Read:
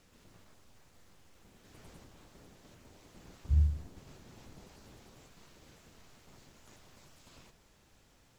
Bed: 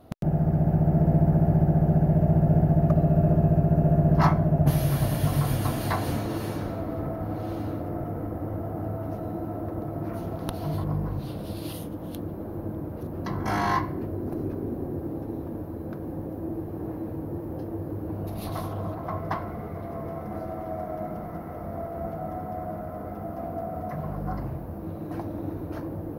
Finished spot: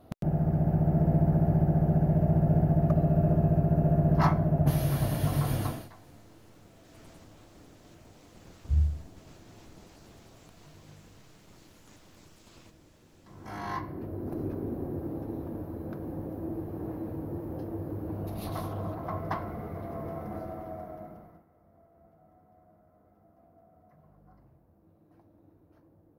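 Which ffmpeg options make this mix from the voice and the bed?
-filter_complex "[0:a]adelay=5200,volume=1.19[s0];[1:a]volume=10,afade=t=out:st=5.61:d=0.28:silence=0.0707946,afade=t=in:st=13.25:d=1.2:silence=0.0668344,afade=t=out:st=20.23:d=1.23:silence=0.0595662[s1];[s0][s1]amix=inputs=2:normalize=0"

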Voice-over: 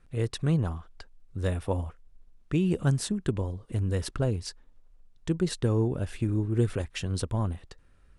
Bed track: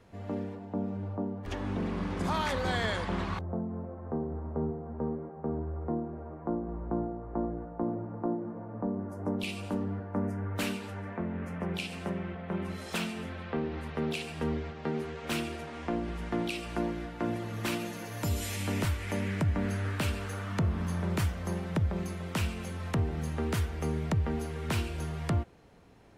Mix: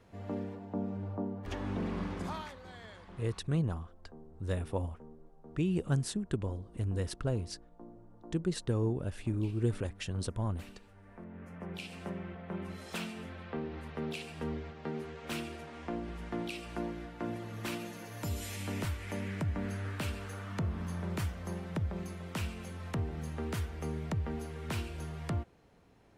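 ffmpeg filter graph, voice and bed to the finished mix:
-filter_complex "[0:a]adelay=3050,volume=0.531[s0];[1:a]volume=3.76,afade=t=out:st=2:d=0.55:silence=0.141254,afade=t=in:st=10.97:d=1.11:silence=0.199526[s1];[s0][s1]amix=inputs=2:normalize=0"

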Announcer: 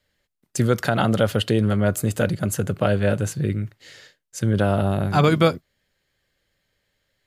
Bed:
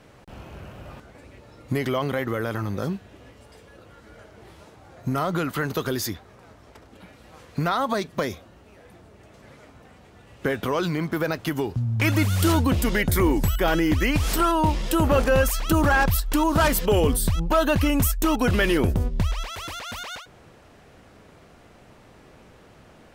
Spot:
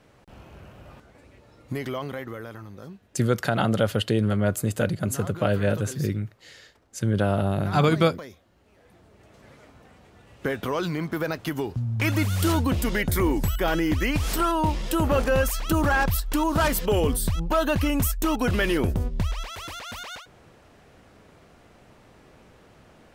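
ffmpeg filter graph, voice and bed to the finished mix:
-filter_complex "[0:a]adelay=2600,volume=0.708[s0];[1:a]volume=2,afade=t=out:st=1.87:d=0.82:silence=0.375837,afade=t=in:st=8.44:d=0.98:silence=0.266073[s1];[s0][s1]amix=inputs=2:normalize=0"

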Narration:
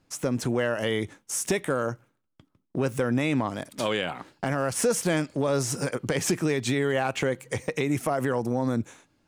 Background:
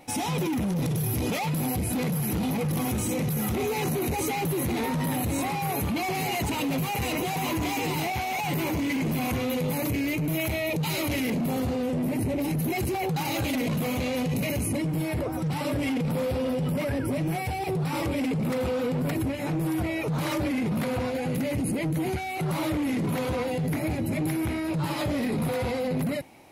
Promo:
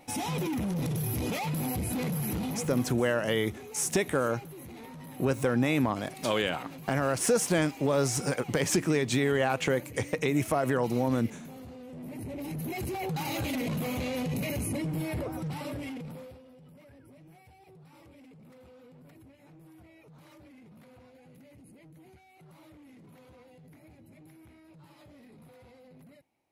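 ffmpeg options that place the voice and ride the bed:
-filter_complex "[0:a]adelay=2450,volume=0.891[s0];[1:a]volume=2.99,afade=t=out:st=2.29:d=0.76:silence=0.199526,afade=t=in:st=11.87:d=1.35:silence=0.211349,afade=t=out:st=15.16:d=1.26:silence=0.0749894[s1];[s0][s1]amix=inputs=2:normalize=0"

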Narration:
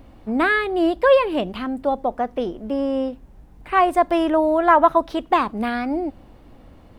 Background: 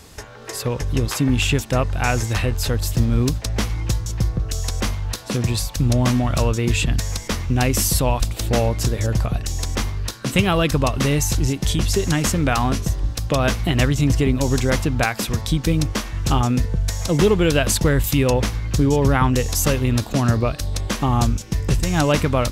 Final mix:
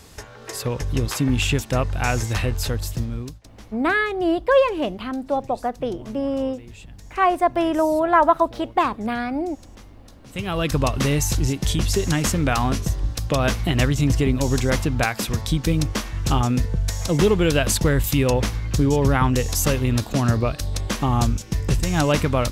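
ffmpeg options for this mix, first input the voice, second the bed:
-filter_complex "[0:a]adelay=3450,volume=0.841[s0];[1:a]volume=9.44,afade=t=out:st=2.58:d=0.82:silence=0.0891251,afade=t=in:st=10.27:d=0.52:silence=0.0841395[s1];[s0][s1]amix=inputs=2:normalize=0"

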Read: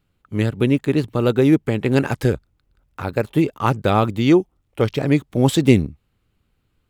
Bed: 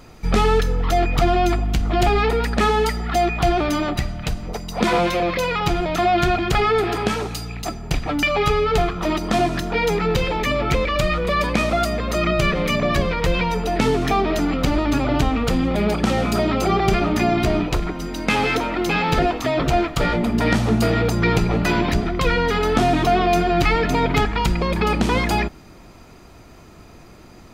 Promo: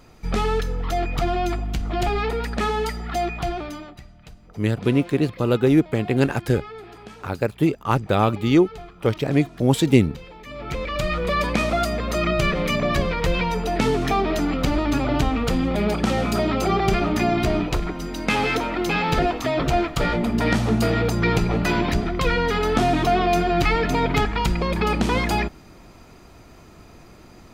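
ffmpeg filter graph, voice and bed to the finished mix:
-filter_complex "[0:a]adelay=4250,volume=0.794[s0];[1:a]volume=4.22,afade=t=out:st=3.25:d=0.68:silence=0.188365,afade=t=in:st=10.45:d=0.81:silence=0.125893[s1];[s0][s1]amix=inputs=2:normalize=0"

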